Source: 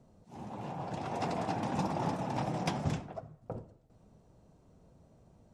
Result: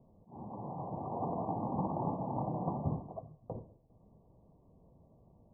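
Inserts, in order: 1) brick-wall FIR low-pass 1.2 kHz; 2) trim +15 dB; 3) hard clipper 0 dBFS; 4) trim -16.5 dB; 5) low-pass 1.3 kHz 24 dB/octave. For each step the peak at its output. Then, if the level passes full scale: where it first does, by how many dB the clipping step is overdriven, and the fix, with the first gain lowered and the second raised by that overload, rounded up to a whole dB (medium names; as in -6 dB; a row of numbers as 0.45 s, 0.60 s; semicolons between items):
-19.5 dBFS, -4.5 dBFS, -4.5 dBFS, -21.0 dBFS, -21.0 dBFS; nothing clips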